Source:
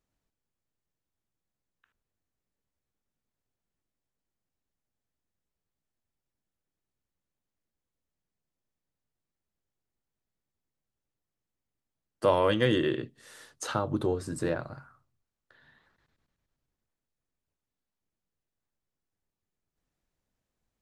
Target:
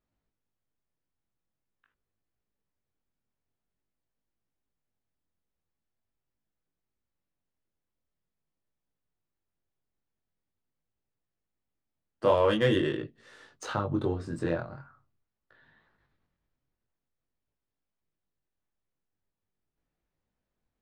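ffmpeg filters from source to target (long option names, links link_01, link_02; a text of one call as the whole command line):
ffmpeg -i in.wav -af "adynamicsmooth=sensitivity=4:basefreq=4200,flanger=delay=18:depth=6.2:speed=0.45,volume=3dB" out.wav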